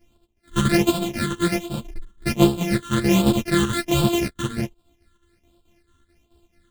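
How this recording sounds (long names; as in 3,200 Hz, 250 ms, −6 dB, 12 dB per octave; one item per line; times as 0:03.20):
a buzz of ramps at a fixed pitch in blocks of 128 samples
phaser sweep stages 8, 1.3 Hz, lowest notch 670–1,900 Hz
chopped level 4.6 Hz, depth 60%, duty 75%
a shimmering, thickened sound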